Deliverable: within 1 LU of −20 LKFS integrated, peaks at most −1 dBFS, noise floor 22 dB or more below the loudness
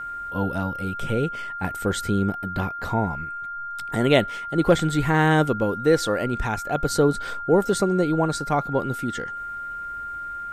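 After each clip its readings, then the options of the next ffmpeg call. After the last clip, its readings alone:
interfering tone 1,400 Hz; level of the tone −30 dBFS; integrated loudness −24.0 LKFS; sample peak −5.5 dBFS; target loudness −20.0 LKFS
→ -af "bandreject=frequency=1400:width=30"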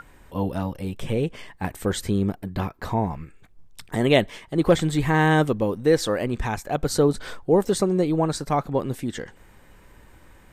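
interfering tone none found; integrated loudness −24.0 LKFS; sample peak −5.5 dBFS; target loudness −20.0 LKFS
→ -af "volume=4dB"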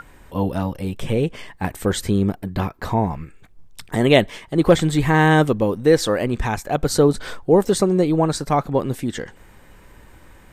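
integrated loudness −20.0 LKFS; sample peak −1.5 dBFS; background noise floor −48 dBFS

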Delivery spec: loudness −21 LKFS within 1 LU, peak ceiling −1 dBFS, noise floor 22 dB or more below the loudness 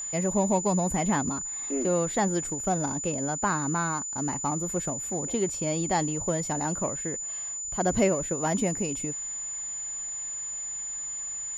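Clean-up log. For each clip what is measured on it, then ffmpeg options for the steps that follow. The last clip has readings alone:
interfering tone 7,000 Hz; level of the tone −32 dBFS; integrated loudness −28.0 LKFS; sample peak −10.5 dBFS; target loudness −21.0 LKFS
→ -af "bandreject=frequency=7000:width=30"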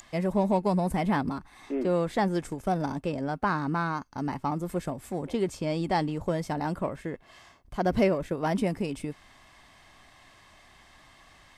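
interfering tone none found; integrated loudness −29.5 LKFS; sample peak −10.5 dBFS; target loudness −21.0 LKFS
→ -af "volume=8.5dB"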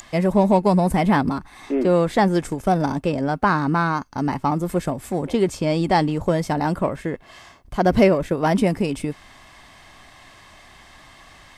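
integrated loudness −21.0 LKFS; sample peak −2.0 dBFS; background noise floor −48 dBFS

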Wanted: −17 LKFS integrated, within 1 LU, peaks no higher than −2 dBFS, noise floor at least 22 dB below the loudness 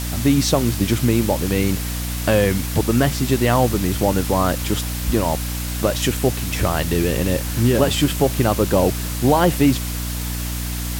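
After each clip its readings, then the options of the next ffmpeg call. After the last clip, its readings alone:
mains hum 60 Hz; hum harmonics up to 300 Hz; level of the hum −24 dBFS; background noise floor −25 dBFS; target noise floor −42 dBFS; integrated loudness −19.5 LKFS; sample peak −3.0 dBFS; target loudness −17.0 LKFS
→ -af "bandreject=frequency=60:width_type=h:width=6,bandreject=frequency=120:width_type=h:width=6,bandreject=frequency=180:width_type=h:width=6,bandreject=frequency=240:width_type=h:width=6,bandreject=frequency=300:width_type=h:width=6"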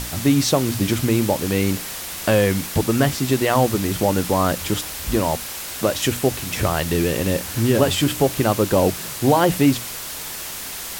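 mains hum none found; background noise floor −31 dBFS; target noise floor −43 dBFS
→ -af "afftdn=noise_reduction=12:noise_floor=-31"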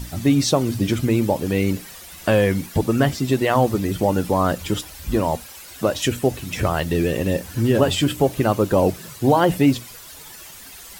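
background noise floor −41 dBFS; target noise floor −43 dBFS
→ -af "afftdn=noise_reduction=6:noise_floor=-41"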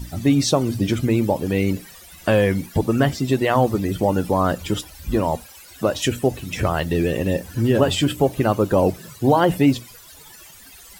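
background noise floor −44 dBFS; integrated loudness −20.5 LKFS; sample peak −4.5 dBFS; target loudness −17.0 LKFS
→ -af "volume=3.5dB,alimiter=limit=-2dB:level=0:latency=1"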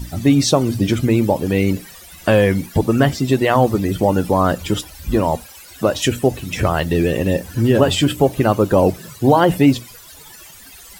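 integrated loudness −17.0 LKFS; sample peak −2.0 dBFS; background noise floor −41 dBFS

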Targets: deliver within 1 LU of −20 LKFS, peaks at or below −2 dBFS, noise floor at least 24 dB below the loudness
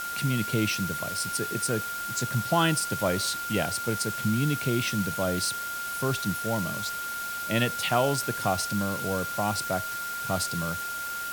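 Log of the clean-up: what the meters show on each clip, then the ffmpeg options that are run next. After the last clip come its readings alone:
interfering tone 1,400 Hz; level of the tone −32 dBFS; background noise floor −34 dBFS; target noise floor −52 dBFS; integrated loudness −28.0 LKFS; sample peak −10.0 dBFS; target loudness −20.0 LKFS
→ -af "bandreject=frequency=1400:width=30"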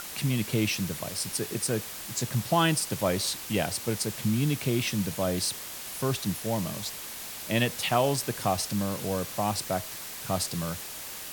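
interfering tone none found; background noise floor −40 dBFS; target noise floor −53 dBFS
→ -af "afftdn=noise_reduction=13:noise_floor=-40"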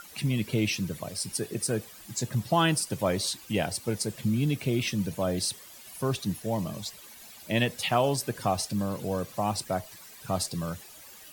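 background noise floor −49 dBFS; target noise floor −54 dBFS
→ -af "afftdn=noise_reduction=6:noise_floor=-49"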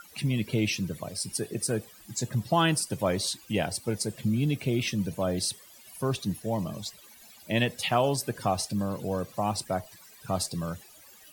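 background noise floor −53 dBFS; target noise floor −54 dBFS
→ -af "afftdn=noise_reduction=6:noise_floor=-53"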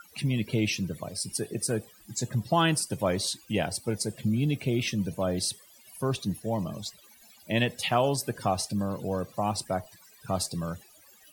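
background noise floor −56 dBFS; integrated loudness −29.5 LKFS; sample peak −10.0 dBFS; target loudness −20.0 LKFS
→ -af "volume=9.5dB,alimiter=limit=-2dB:level=0:latency=1"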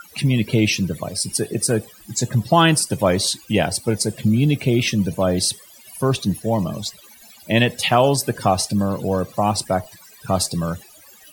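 integrated loudness −20.0 LKFS; sample peak −2.0 dBFS; background noise floor −47 dBFS

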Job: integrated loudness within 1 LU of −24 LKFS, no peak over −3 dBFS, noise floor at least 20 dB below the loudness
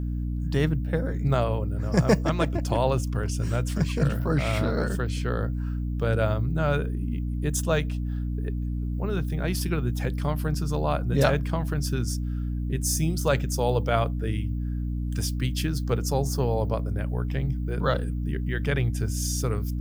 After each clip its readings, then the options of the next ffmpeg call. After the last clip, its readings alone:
mains hum 60 Hz; hum harmonics up to 300 Hz; level of the hum −26 dBFS; integrated loudness −27.0 LKFS; sample peak −6.0 dBFS; target loudness −24.0 LKFS
→ -af "bandreject=frequency=60:width_type=h:width=6,bandreject=frequency=120:width_type=h:width=6,bandreject=frequency=180:width_type=h:width=6,bandreject=frequency=240:width_type=h:width=6,bandreject=frequency=300:width_type=h:width=6"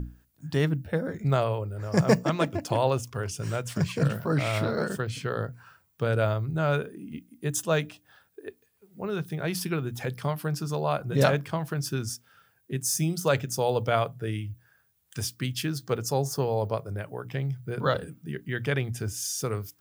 mains hum none found; integrated loudness −28.5 LKFS; sample peak −6.0 dBFS; target loudness −24.0 LKFS
→ -af "volume=4.5dB,alimiter=limit=-3dB:level=0:latency=1"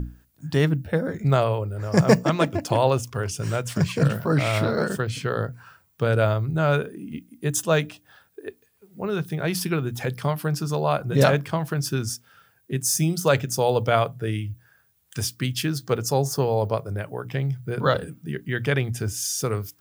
integrated loudness −24.0 LKFS; sample peak −3.0 dBFS; background noise floor −63 dBFS

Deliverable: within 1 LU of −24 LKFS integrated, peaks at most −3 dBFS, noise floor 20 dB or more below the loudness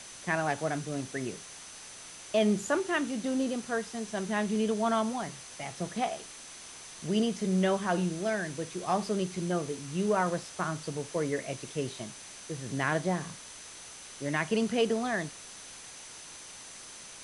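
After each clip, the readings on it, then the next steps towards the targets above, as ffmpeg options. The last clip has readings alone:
interfering tone 6,100 Hz; level of the tone −51 dBFS; background noise floor −47 dBFS; target noise floor −52 dBFS; integrated loudness −31.5 LKFS; sample peak −14.5 dBFS; target loudness −24.0 LKFS
→ -af "bandreject=frequency=6100:width=30"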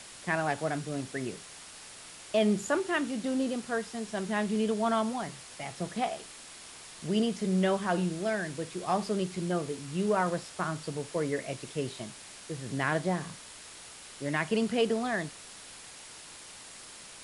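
interfering tone none found; background noise floor −48 dBFS; target noise floor −52 dBFS
→ -af "afftdn=noise_reduction=6:noise_floor=-48"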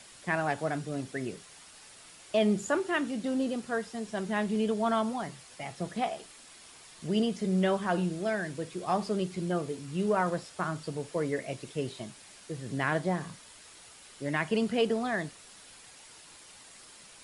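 background noise floor −53 dBFS; integrated loudness −31.5 LKFS; sample peak −14.5 dBFS; target loudness −24.0 LKFS
→ -af "volume=7.5dB"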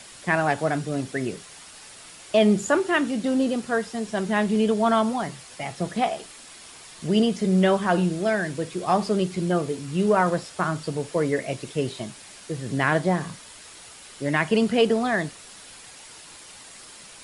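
integrated loudness −24.0 LKFS; sample peak −7.0 dBFS; background noise floor −45 dBFS

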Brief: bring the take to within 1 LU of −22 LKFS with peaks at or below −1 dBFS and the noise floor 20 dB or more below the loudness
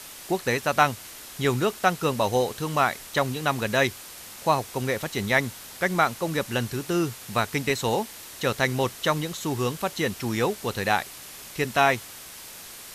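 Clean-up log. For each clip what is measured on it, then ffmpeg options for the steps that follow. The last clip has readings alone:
background noise floor −43 dBFS; target noise floor −46 dBFS; integrated loudness −25.5 LKFS; sample peak −5.0 dBFS; target loudness −22.0 LKFS
→ -af "afftdn=noise_reduction=6:noise_floor=-43"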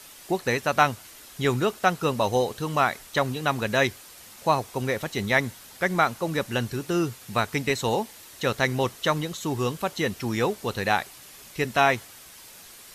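background noise floor −47 dBFS; integrated loudness −25.5 LKFS; sample peak −5.0 dBFS; target loudness −22.0 LKFS
→ -af "volume=3.5dB"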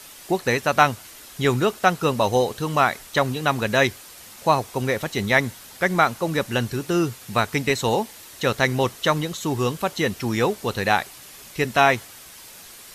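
integrated loudness −22.0 LKFS; sample peak −1.5 dBFS; background noise floor −44 dBFS

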